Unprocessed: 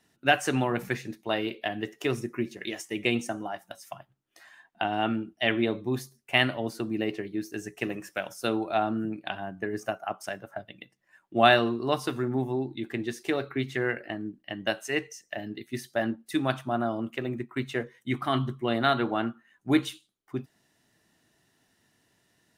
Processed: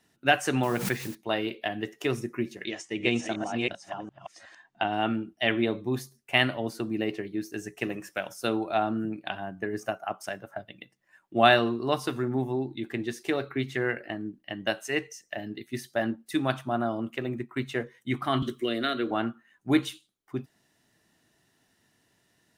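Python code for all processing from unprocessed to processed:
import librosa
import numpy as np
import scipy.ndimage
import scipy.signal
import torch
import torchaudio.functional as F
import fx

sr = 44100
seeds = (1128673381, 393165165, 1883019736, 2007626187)

y = fx.chain(x, sr, fx.lowpass(hz=9900.0, slope=12),
    fx.quant_dither(seeds[0], bits=8, dither='triangular'),
    fx.pre_swell(db_per_s=67.0), at=(0.63, 1.15))
y = fx.chain(y, sr, fx.reverse_delay(ms=363, wet_db=-3.0),
    fx.lowpass(hz=7500.0, slope=24), at=(2.64, 4.91))
y = fx.chain(y, sr, fx.fixed_phaser(hz=360.0, stages=4),
    fx.band_squash(depth_pct=70), at=(18.42, 19.11))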